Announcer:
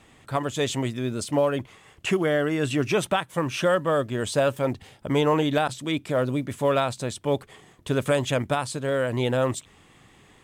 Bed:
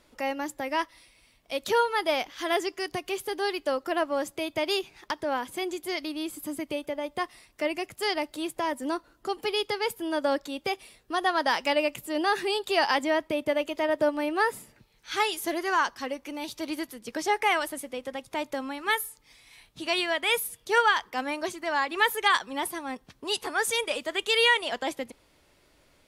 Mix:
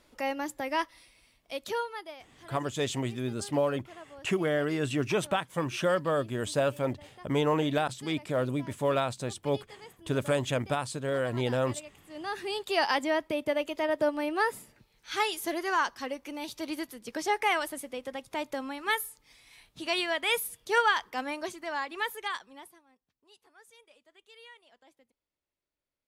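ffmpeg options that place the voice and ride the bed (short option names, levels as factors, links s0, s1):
-filter_complex "[0:a]adelay=2200,volume=0.562[s0];[1:a]volume=7.08,afade=t=out:st=1.15:d=1:silence=0.105925,afade=t=in:st=12.04:d=0.76:silence=0.11885,afade=t=out:st=21.08:d=1.77:silence=0.0398107[s1];[s0][s1]amix=inputs=2:normalize=0"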